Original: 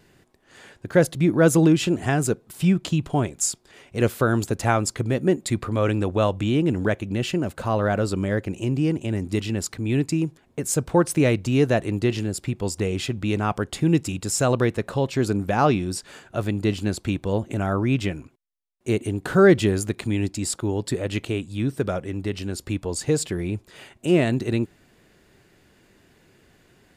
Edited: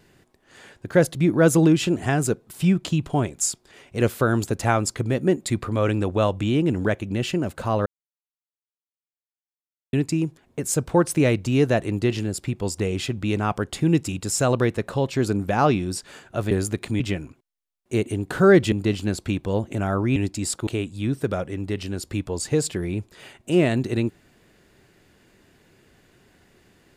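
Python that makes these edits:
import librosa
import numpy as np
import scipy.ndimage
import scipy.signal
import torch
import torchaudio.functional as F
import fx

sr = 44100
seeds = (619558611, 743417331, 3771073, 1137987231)

y = fx.edit(x, sr, fx.silence(start_s=7.86, length_s=2.07),
    fx.swap(start_s=16.51, length_s=1.44, other_s=19.67, other_length_s=0.49),
    fx.cut(start_s=20.67, length_s=0.56), tone=tone)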